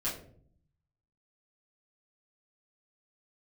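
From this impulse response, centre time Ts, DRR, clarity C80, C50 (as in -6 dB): 33 ms, -10.0 dB, 11.0 dB, 7.0 dB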